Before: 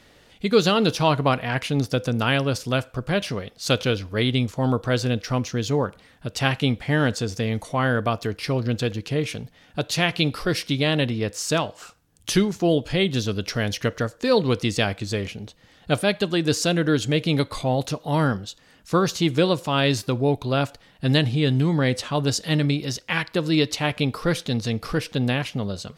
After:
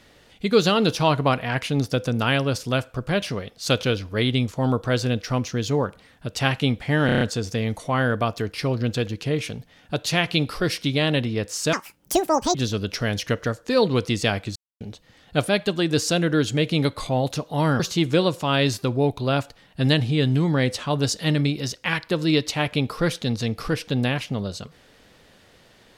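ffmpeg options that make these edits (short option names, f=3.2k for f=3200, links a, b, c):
-filter_complex "[0:a]asplit=11[a][b][c][d][e][f][g][h][i][j][k];[a]atrim=end=7.092[l];[b]atrim=start=7.058:end=7.092[m];[c]atrim=start=7.058:end=7.092[n];[d]atrim=start=7.058:end=7.092[o];[e]atrim=start=7.058:end=7.092[p];[f]atrim=start=7.058:end=11.584[q];[g]atrim=start=11.58:end=13.09,asetpts=PTS-STARTPTS,asetrate=81585,aresample=44100,atrim=end_sample=35995,asetpts=PTS-STARTPTS[r];[h]atrim=start=13.086:end=15.1,asetpts=PTS-STARTPTS,afade=t=out:st=2.01:d=0.004:c=hsin[s];[i]atrim=start=15.1:end=15.35,asetpts=PTS-STARTPTS,volume=0[t];[j]atrim=start=15.35:end=18.342,asetpts=PTS-STARTPTS,afade=t=in:d=0.004:c=hsin[u];[k]atrim=start=19.038[v];[l][m]acrossfade=d=0.004:c1=hsin:c2=hsin[w];[w][n]acrossfade=d=0.004:c1=hsin:c2=hsin[x];[x][o]acrossfade=d=0.004:c1=hsin:c2=hsin[y];[y][p]acrossfade=d=0.004:c1=hsin:c2=hsin[z];[z][q]acrossfade=d=0.004:c1=hsin:c2=hsin[aa];[aa][r]acrossfade=d=0.004:c1=hsin:c2=hsin[ab];[s][t][u]concat=n=3:v=0:a=1[ac];[ab][ac]acrossfade=d=0.004:c1=hsin:c2=hsin[ad];[ad][v]acrossfade=d=0.004:c1=hsin:c2=hsin"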